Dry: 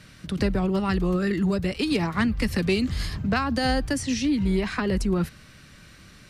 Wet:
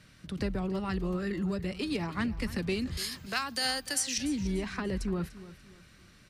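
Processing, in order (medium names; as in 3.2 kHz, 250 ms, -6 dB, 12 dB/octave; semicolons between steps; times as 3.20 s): 2.97–4.18 s: tilt EQ +4.5 dB/octave; on a send: feedback delay 293 ms, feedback 34%, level -16 dB; on the sum: trim -8.5 dB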